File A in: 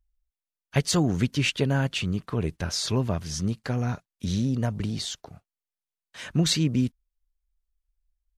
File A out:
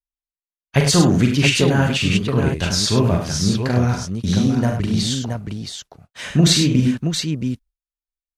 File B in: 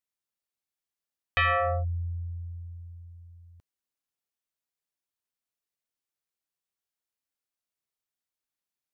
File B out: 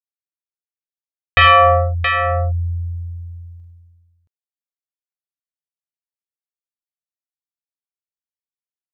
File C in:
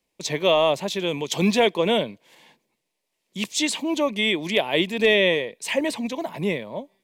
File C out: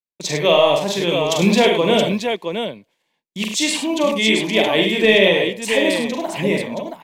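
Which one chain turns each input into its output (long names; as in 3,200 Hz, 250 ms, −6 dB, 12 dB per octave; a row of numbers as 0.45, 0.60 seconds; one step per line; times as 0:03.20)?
downward expander −42 dBFS
on a send: multi-tap delay 41/46/73/101/673 ms −6.5/−8.5/−10/−8/−6 dB
on the sum: normalise the peak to −1.5 dBFS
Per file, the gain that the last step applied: +7.0, +13.0, +3.0 decibels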